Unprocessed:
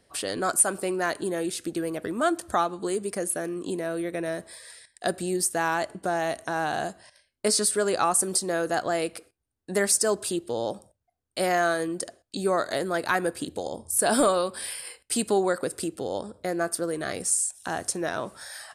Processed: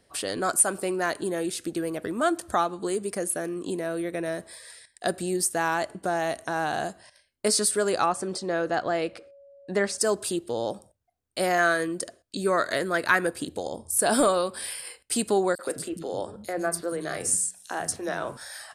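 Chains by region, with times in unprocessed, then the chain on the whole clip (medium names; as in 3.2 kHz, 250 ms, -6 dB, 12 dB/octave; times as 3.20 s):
8.05–9.97 s: low-pass 4.2 kHz + whistle 560 Hz -49 dBFS
11.58–13.27 s: band-stop 790 Hz, Q 5.5 + dynamic bell 1.8 kHz, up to +6 dB, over -39 dBFS, Q 1.1
15.55–18.37 s: de-hum 91.77 Hz, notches 35 + three bands offset in time highs, mids, lows 40/130 ms, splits 240/3900 Hz
whole clip: none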